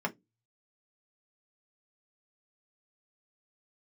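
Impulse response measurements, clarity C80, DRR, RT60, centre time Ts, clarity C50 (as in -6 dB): 34.5 dB, 2.0 dB, 0.15 s, 6 ms, 23.5 dB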